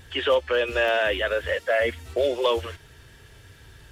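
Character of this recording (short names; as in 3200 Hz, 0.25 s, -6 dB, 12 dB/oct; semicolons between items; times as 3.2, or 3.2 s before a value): noise floor -51 dBFS; spectral tilt -1.5 dB/oct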